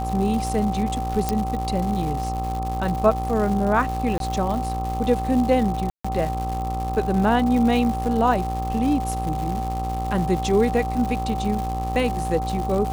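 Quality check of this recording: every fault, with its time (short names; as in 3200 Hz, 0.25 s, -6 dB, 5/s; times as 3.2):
buzz 60 Hz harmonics 22 -28 dBFS
crackle 260/s -28 dBFS
tone 770 Hz -27 dBFS
1.29 pop -8 dBFS
4.18–4.2 gap 22 ms
5.9–6.04 gap 0.145 s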